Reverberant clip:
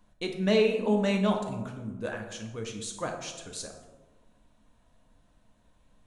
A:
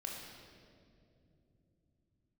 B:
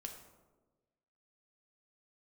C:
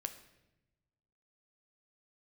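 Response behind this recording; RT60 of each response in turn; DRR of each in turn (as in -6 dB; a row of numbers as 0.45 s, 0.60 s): B; 2.8 s, 1.3 s, 0.95 s; -1.5 dB, 3.0 dB, 7.5 dB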